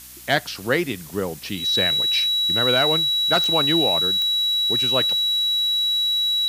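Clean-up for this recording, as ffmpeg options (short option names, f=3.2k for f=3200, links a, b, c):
-af "adeclick=t=4,bandreject=f=62:t=h:w=4,bandreject=f=124:t=h:w=4,bandreject=f=186:t=h:w=4,bandreject=f=248:t=h:w=4,bandreject=f=310:t=h:w=4,bandreject=f=3.9k:w=30,afftdn=nr=30:nf=-36"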